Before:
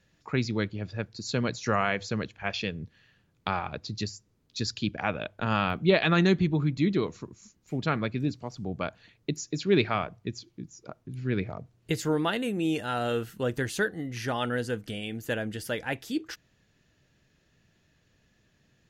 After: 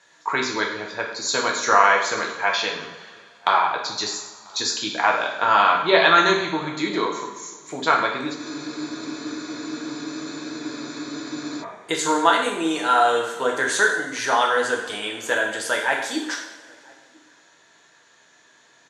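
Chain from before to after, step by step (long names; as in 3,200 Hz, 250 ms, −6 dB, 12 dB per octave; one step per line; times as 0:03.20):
high-shelf EQ 3,400 Hz +8 dB
in parallel at +1 dB: downward compressor, threshold −38 dBFS, peak gain reduction 20 dB
on the sum: loudspeaker in its box 490–8,400 Hz, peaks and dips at 980 Hz +10 dB, 1,500 Hz +3 dB, 2,700 Hz −8 dB, 5,100 Hz −8 dB
slap from a distant wall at 170 metres, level −27 dB
coupled-rooms reverb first 0.74 s, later 2.7 s, from −18 dB, DRR −1 dB
frozen spectrum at 0:08.38, 3.25 s
level +4 dB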